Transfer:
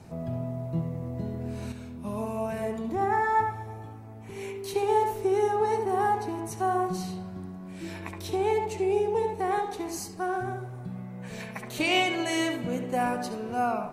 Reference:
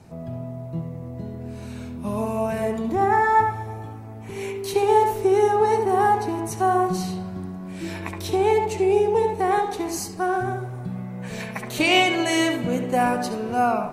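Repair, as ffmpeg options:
ffmpeg -i in.wav -af "asetnsamples=nb_out_samples=441:pad=0,asendcmd='1.72 volume volume 6.5dB',volume=0dB" out.wav

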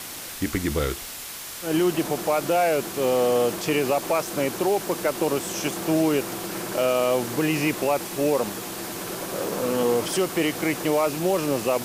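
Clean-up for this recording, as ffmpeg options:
ffmpeg -i in.wav -af "afftdn=noise_reduction=30:noise_floor=-35" out.wav

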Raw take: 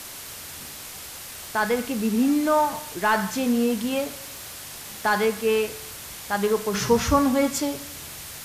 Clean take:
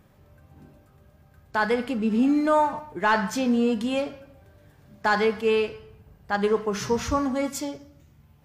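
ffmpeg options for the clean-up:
ffmpeg -i in.wav -af "adeclick=threshold=4,afwtdn=0.014,asetnsamples=nb_out_samples=441:pad=0,asendcmd='6.74 volume volume -5dB',volume=0dB" out.wav

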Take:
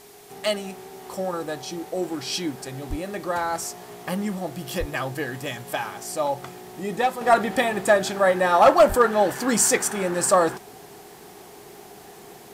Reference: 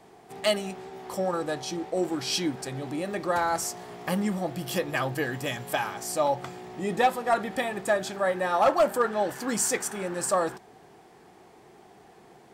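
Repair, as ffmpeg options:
ffmpeg -i in.wav -filter_complex "[0:a]bandreject=frequency=410:width=30,asplit=3[link_01][link_02][link_03];[link_01]afade=type=out:start_time=2.89:duration=0.02[link_04];[link_02]highpass=frequency=140:width=0.5412,highpass=frequency=140:width=1.3066,afade=type=in:start_time=2.89:duration=0.02,afade=type=out:start_time=3.01:duration=0.02[link_05];[link_03]afade=type=in:start_time=3.01:duration=0.02[link_06];[link_04][link_05][link_06]amix=inputs=3:normalize=0,asplit=3[link_07][link_08][link_09];[link_07]afade=type=out:start_time=4.79:duration=0.02[link_10];[link_08]highpass=frequency=140:width=0.5412,highpass=frequency=140:width=1.3066,afade=type=in:start_time=4.79:duration=0.02,afade=type=out:start_time=4.91:duration=0.02[link_11];[link_09]afade=type=in:start_time=4.91:duration=0.02[link_12];[link_10][link_11][link_12]amix=inputs=3:normalize=0,asplit=3[link_13][link_14][link_15];[link_13]afade=type=out:start_time=8.88:duration=0.02[link_16];[link_14]highpass=frequency=140:width=0.5412,highpass=frequency=140:width=1.3066,afade=type=in:start_time=8.88:duration=0.02,afade=type=out:start_time=9:duration=0.02[link_17];[link_15]afade=type=in:start_time=9:duration=0.02[link_18];[link_16][link_17][link_18]amix=inputs=3:normalize=0,agate=range=-21dB:threshold=-37dB,asetnsamples=nb_out_samples=441:pad=0,asendcmd='7.21 volume volume -7dB',volume=0dB" out.wav

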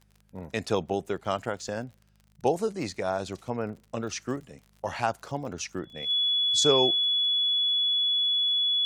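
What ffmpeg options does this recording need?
ffmpeg -i in.wav -af "adeclick=threshold=4,bandreject=frequency=51.4:width_type=h:width=4,bandreject=frequency=102.8:width_type=h:width=4,bandreject=frequency=154.2:width_type=h:width=4,bandreject=frequency=205.6:width_type=h:width=4,bandreject=frequency=3400:width=30" out.wav

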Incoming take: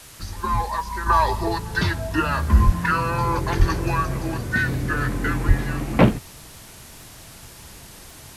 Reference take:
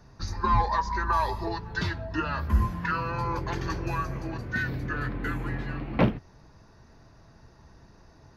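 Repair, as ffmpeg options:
ffmpeg -i in.wav -filter_complex "[0:a]adeclick=threshold=4,asplit=3[link_01][link_02][link_03];[link_01]afade=type=out:start_time=2.65:duration=0.02[link_04];[link_02]highpass=frequency=140:width=0.5412,highpass=frequency=140:width=1.3066,afade=type=in:start_time=2.65:duration=0.02,afade=type=out:start_time=2.77:duration=0.02[link_05];[link_03]afade=type=in:start_time=2.77:duration=0.02[link_06];[link_04][link_05][link_06]amix=inputs=3:normalize=0,asplit=3[link_07][link_08][link_09];[link_07]afade=type=out:start_time=3.58:duration=0.02[link_10];[link_08]highpass=frequency=140:width=0.5412,highpass=frequency=140:width=1.3066,afade=type=in:start_time=3.58:duration=0.02,afade=type=out:start_time=3.7:duration=0.02[link_11];[link_09]afade=type=in:start_time=3.7:duration=0.02[link_12];[link_10][link_11][link_12]amix=inputs=3:normalize=0,asplit=3[link_13][link_14][link_15];[link_13]afade=type=out:start_time=5.47:duration=0.02[link_16];[link_14]highpass=frequency=140:width=0.5412,highpass=frequency=140:width=1.3066,afade=type=in:start_time=5.47:duration=0.02,afade=type=out:start_time=5.59:duration=0.02[link_17];[link_15]afade=type=in:start_time=5.59:duration=0.02[link_18];[link_16][link_17][link_18]amix=inputs=3:normalize=0,afwtdn=0.0071,asetnsamples=nb_out_samples=441:pad=0,asendcmd='1.06 volume volume -7.5dB',volume=0dB" out.wav

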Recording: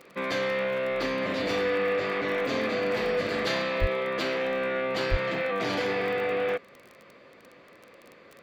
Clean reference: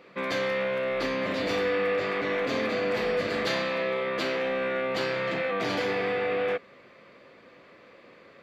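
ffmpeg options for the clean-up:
ffmpeg -i in.wav -filter_complex "[0:a]adeclick=threshold=4,asplit=3[link_01][link_02][link_03];[link_01]afade=type=out:start_time=3.8:duration=0.02[link_04];[link_02]highpass=frequency=140:width=0.5412,highpass=frequency=140:width=1.3066,afade=type=in:start_time=3.8:duration=0.02,afade=type=out:start_time=3.92:duration=0.02[link_05];[link_03]afade=type=in:start_time=3.92:duration=0.02[link_06];[link_04][link_05][link_06]amix=inputs=3:normalize=0,asplit=3[link_07][link_08][link_09];[link_07]afade=type=out:start_time=5.1:duration=0.02[link_10];[link_08]highpass=frequency=140:width=0.5412,highpass=frequency=140:width=1.3066,afade=type=in:start_time=5.1:duration=0.02,afade=type=out:start_time=5.22:duration=0.02[link_11];[link_09]afade=type=in:start_time=5.22:duration=0.02[link_12];[link_10][link_11][link_12]amix=inputs=3:normalize=0" out.wav

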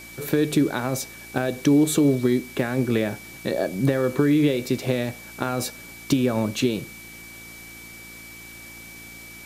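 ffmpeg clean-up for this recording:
ffmpeg -i in.wav -af "adeclick=threshold=4,bandreject=frequency=56.9:width_type=h:width=4,bandreject=frequency=113.8:width_type=h:width=4,bandreject=frequency=170.7:width_type=h:width=4,bandreject=frequency=227.6:width_type=h:width=4,bandreject=frequency=284.5:width_type=h:width=4,bandreject=frequency=341.4:width_type=h:width=4,bandreject=frequency=2300:width=30,afwtdn=0.0056" out.wav

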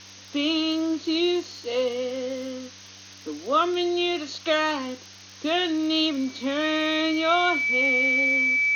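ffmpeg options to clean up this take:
ffmpeg -i in.wav -af "adeclick=threshold=4,bandreject=frequency=96.6:width_type=h:width=4,bandreject=frequency=193.2:width_type=h:width=4,bandreject=frequency=289.8:width_type=h:width=4,bandreject=frequency=2300:width=30,afftdn=noise_reduction=25:noise_floor=-46" out.wav

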